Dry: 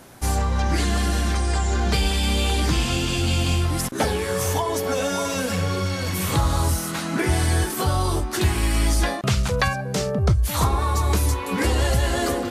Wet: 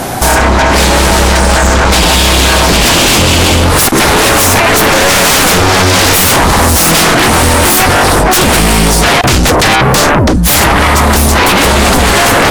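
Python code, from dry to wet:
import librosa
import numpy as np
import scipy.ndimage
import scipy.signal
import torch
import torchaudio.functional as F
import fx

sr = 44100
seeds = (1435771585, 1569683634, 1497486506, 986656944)

p1 = fx.peak_eq(x, sr, hz=750.0, db=8.5, octaves=0.32)
p2 = fx.over_compress(p1, sr, threshold_db=-25.0, ratio=-0.5)
p3 = p1 + (p2 * 10.0 ** (1.0 / 20.0))
y = fx.fold_sine(p3, sr, drive_db=15, ceiling_db=-4.0)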